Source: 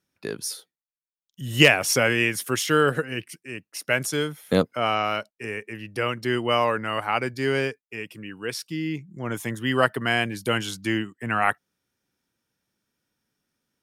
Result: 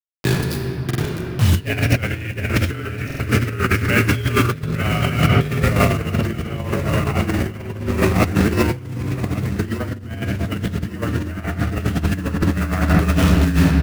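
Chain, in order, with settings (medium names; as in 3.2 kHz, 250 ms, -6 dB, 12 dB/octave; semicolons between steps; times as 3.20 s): frequency shift -30 Hz; de-esser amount 65%; graphic EQ 125/250/500/1000/2000/4000/8000 Hz +7/-5/-8/-7/+3/+5/-6 dB; ever faster or slower copies 622 ms, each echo -1 st, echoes 2; tilt shelf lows +4.5 dB, from 5.52 s lows +10 dB; word length cut 6-bit, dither none; simulated room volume 190 m³, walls hard, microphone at 0.46 m; compressor with a negative ratio -23 dBFS, ratio -0.5; feedback delay 1154 ms, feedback 34%, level -16 dB; buffer glitch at 0.86/3.06 s, samples 2048, times 2; trim +5 dB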